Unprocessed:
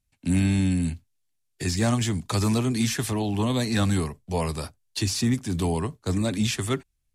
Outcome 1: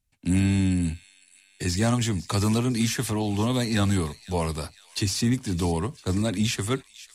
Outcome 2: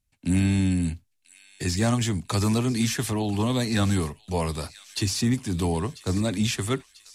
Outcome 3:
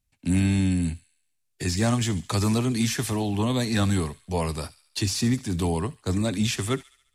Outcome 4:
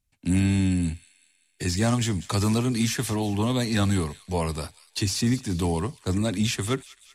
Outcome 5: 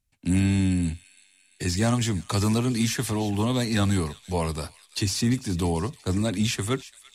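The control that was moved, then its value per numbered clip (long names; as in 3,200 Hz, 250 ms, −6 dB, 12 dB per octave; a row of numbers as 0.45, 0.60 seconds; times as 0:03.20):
delay with a high-pass on its return, delay time: 505, 992, 70, 192, 341 milliseconds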